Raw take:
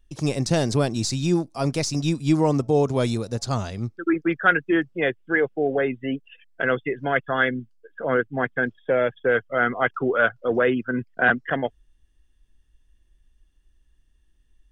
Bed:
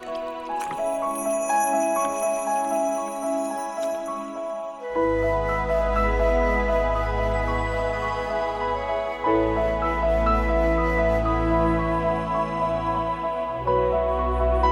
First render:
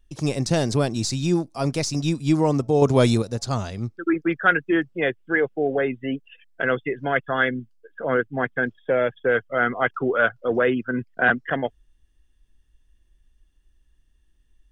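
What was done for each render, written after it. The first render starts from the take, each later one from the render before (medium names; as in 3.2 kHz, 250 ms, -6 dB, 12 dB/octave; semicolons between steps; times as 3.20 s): 2.82–3.22 s: gain +5.5 dB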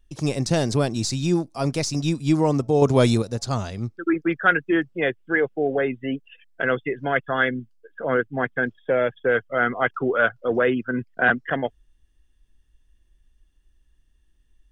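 no audible change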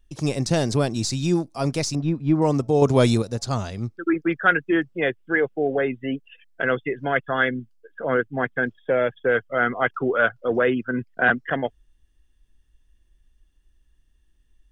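1.95–2.42 s: low-pass 1.6 kHz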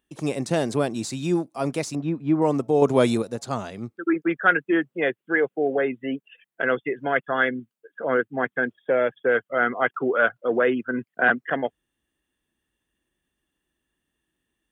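high-pass 200 Hz 12 dB/octave; peaking EQ 5.2 kHz -10 dB 0.85 oct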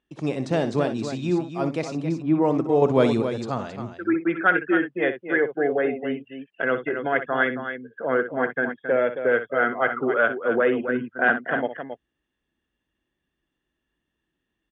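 distance through air 120 m; on a send: loudspeakers at several distances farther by 21 m -11 dB, 93 m -9 dB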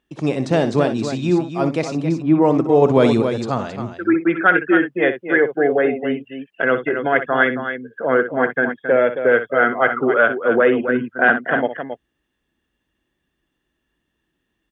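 trim +6 dB; peak limiter -2 dBFS, peak gain reduction 3 dB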